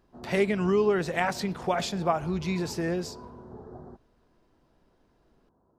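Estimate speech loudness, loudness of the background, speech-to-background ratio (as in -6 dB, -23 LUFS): -28.0 LUFS, -45.0 LUFS, 17.0 dB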